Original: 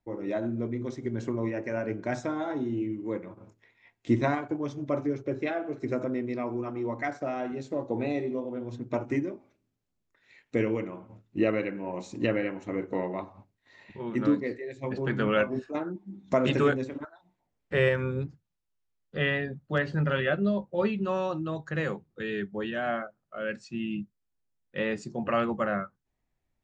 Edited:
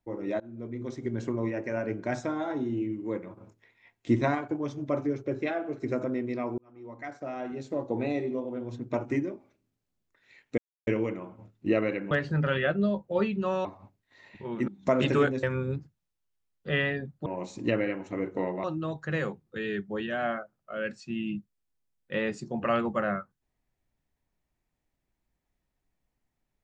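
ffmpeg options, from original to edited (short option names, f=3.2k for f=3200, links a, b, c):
-filter_complex "[0:a]asplit=10[a][b][c][d][e][f][g][h][i][j];[a]atrim=end=0.4,asetpts=PTS-STARTPTS,afade=t=out:st=0.396:d=0.004:c=hsin:silence=0.0707946[k];[b]atrim=start=0.4:end=6.58,asetpts=PTS-STARTPTS,afade=t=in:d=0.59:silence=0.0707946,afade=t=out:st=6.176:d=0.004:c=hsin[l];[c]atrim=start=6.58:end=10.58,asetpts=PTS-STARTPTS,afade=t=in:d=1.18,afade=t=out:st=3.996:d=0.004:c=hsin,apad=pad_dur=0.29[m];[d]atrim=start=10.58:end=11.822,asetpts=PTS-STARTPTS,afade=t=in:d=0.004:c=hsin[n];[e]atrim=start=19.738:end=21.282[o];[f]atrim=start=13.198:end=14.232[p];[g]atrim=start=16.128:end=16.882[q];[h]atrim=start=17.908:end=19.742[r];[i]atrim=start=11.818:end=13.202[s];[j]atrim=start=21.278[t];[k][l][m][n]concat=n=4:v=0:a=1[u];[u][o]acrossfade=d=0.004:c1=hsin:c2=hsin[v];[v][p]acrossfade=d=0.004:c1=hsin:c2=hsin[w];[w][q]acrossfade=d=0.004:c1=hsin:c2=hsin[x];[x][r]acrossfade=d=0.004:c1=hsin:c2=hsin[y];[y][s]acrossfade=d=0.004:c1=hsin:c2=hsin[z];[z][t]acrossfade=d=0.004:c1=hsin:c2=hsin"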